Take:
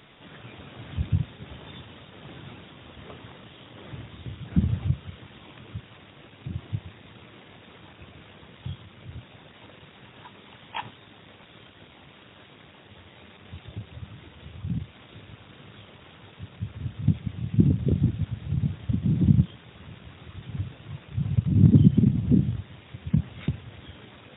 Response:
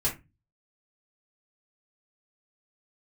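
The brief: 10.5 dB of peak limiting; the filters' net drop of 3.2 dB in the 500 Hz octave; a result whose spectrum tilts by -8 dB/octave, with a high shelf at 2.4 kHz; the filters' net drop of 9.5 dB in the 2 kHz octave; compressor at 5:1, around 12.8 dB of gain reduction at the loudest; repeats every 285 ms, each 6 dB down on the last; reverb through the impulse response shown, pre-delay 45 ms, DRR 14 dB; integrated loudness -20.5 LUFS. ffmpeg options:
-filter_complex "[0:a]equalizer=f=500:t=o:g=-4,equalizer=f=2000:t=o:g=-8.5,highshelf=f=2400:g=-7,acompressor=threshold=0.0501:ratio=5,alimiter=level_in=1.33:limit=0.0631:level=0:latency=1,volume=0.75,aecho=1:1:285|570|855|1140|1425|1710:0.501|0.251|0.125|0.0626|0.0313|0.0157,asplit=2[s0][s1];[1:a]atrim=start_sample=2205,adelay=45[s2];[s1][s2]afir=irnorm=-1:irlink=0,volume=0.0841[s3];[s0][s3]amix=inputs=2:normalize=0,volume=7.94"

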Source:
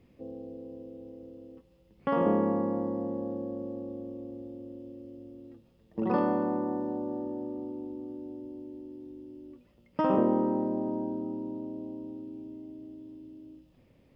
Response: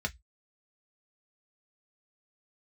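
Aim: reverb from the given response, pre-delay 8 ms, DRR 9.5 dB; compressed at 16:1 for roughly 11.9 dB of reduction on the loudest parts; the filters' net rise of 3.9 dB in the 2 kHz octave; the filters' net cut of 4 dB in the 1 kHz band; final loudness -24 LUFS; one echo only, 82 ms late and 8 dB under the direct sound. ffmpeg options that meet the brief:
-filter_complex "[0:a]equalizer=f=1000:t=o:g=-6.5,equalizer=f=2000:t=o:g=7.5,acompressor=threshold=0.0224:ratio=16,aecho=1:1:82:0.398,asplit=2[s0][s1];[1:a]atrim=start_sample=2205,adelay=8[s2];[s1][s2]afir=irnorm=-1:irlink=0,volume=0.2[s3];[s0][s3]amix=inputs=2:normalize=0,volume=5.96"

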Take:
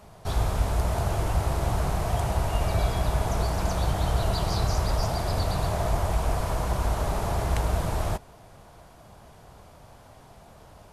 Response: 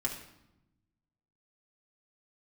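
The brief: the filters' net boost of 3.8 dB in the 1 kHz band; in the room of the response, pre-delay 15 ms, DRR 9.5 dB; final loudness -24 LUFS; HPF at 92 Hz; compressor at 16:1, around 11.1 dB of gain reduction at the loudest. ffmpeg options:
-filter_complex "[0:a]highpass=92,equalizer=f=1000:t=o:g=5,acompressor=threshold=0.02:ratio=16,asplit=2[s0][s1];[1:a]atrim=start_sample=2205,adelay=15[s2];[s1][s2]afir=irnorm=-1:irlink=0,volume=0.237[s3];[s0][s3]amix=inputs=2:normalize=0,volume=5.31"

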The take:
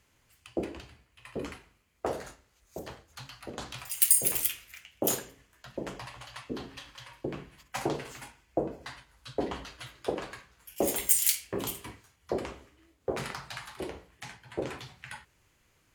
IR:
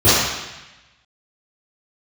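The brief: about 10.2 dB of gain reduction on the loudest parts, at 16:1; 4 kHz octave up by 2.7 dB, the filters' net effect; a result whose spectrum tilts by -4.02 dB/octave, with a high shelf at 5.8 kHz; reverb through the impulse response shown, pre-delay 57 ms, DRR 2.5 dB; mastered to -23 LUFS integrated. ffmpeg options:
-filter_complex "[0:a]equalizer=f=4000:t=o:g=6.5,highshelf=f=5800:g=-8,acompressor=threshold=0.02:ratio=16,asplit=2[s0][s1];[1:a]atrim=start_sample=2205,adelay=57[s2];[s1][s2]afir=irnorm=-1:irlink=0,volume=0.0355[s3];[s0][s3]amix=inputs=2:normalize=0,volume=7.08"

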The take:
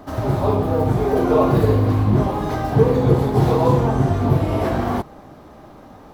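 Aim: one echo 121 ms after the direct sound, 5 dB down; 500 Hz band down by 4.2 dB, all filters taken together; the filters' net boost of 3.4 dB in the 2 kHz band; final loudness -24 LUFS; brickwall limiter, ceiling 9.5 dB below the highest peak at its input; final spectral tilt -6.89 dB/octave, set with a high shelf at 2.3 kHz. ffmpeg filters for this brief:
-af "equalizer=f=500:t=o:g=-5.5,equalizer=f=2000:t=o:g=3,highshelf=f=2300:g=4,alimiter=limit=0.2:level=0:latency=1,aecho=1:1:121:0.562,volume=0.841"

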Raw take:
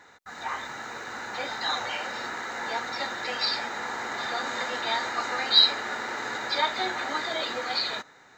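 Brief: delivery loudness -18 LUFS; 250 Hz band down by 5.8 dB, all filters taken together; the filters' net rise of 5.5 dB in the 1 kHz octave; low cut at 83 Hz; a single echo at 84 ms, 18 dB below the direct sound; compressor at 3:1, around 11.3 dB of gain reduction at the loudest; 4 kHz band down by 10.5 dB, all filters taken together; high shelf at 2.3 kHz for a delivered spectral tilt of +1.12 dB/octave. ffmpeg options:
-af "highpass=83,equalizer=f=250:t=o:g=-8.5,equalizer=f=1000:t=o:g=9,highshelf=f=2300:g=-7.5,equalizer=f=4000:t=o:g=-5.5,acompressor=threshold=0.0282:ratio=3,aecho=1:1:84:0.126,volume=5.96"

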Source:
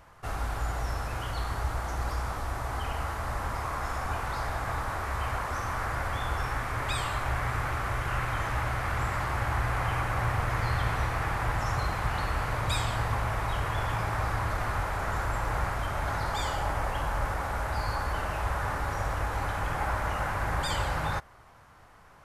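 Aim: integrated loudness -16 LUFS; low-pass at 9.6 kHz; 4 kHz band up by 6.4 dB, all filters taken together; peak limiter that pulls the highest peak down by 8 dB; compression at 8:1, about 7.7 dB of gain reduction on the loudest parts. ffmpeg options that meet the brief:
-af "lowpass=9600,equalizer=f=4000:t=o:g=8,acompressor=threshold=0.0251:ratio=8,volume=14.1,alimiter=limit=0.473:level=0:latency=1"

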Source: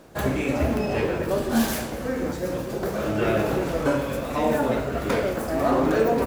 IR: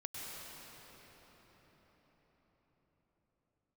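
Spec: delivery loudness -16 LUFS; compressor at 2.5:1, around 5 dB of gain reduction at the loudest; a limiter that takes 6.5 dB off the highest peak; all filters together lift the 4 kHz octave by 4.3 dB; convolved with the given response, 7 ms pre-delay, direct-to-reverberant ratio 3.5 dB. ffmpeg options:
-filter_complex "[0:a]equalizer=f=4000:t=o:g=5.5,acompressor=threshold=0.0631:ratio=2.5,alimiter=limit=0.119:level=0:latency=1,asplit=2[s0][s1];[1:a]atrim=start_sample=2205,adelay=7[s2];[s1][s2]afir=irnorm=-1:irlink=0,volume=0.668[s3];[s0][s3]amix=inputs=2:normalize=0,volume=3.55"

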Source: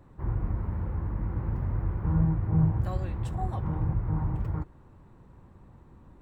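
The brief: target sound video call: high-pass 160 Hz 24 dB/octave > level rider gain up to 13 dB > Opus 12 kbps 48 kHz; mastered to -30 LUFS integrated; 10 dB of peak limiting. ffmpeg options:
-af "alimiter=limit=0.0708:level=0:latency=1,highpass=f=160:w=0.5412,highpass=f=160:w=1.3066,dynaudnorm=m=4.47,volume=3.16" -ar 48000 -c:a libopus -b:a 12k

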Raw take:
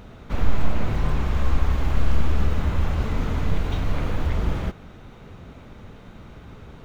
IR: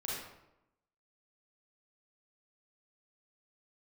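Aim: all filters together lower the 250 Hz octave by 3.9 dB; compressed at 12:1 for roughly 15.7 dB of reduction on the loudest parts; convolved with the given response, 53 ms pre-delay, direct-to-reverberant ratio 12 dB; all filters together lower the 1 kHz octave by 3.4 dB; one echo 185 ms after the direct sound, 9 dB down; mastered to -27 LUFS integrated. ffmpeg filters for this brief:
-filter_complex "[0:a]equalizer=f=250:t=o:g=-5.5,equalizer=f=1000:t=o:g=-4,acompressor=threshold=0.0501:ratio=12,aecho=1:1:185:0.355,asplit=2[s0][s1];[1:a]atrim=start_sample=2205,adelay=53[s2];[s1][s2]afir=irnorm=-1:irlink=0,volume=0.188[s3];[s0][s3]amix=inputs=2:normalize=0,volume=3.16"

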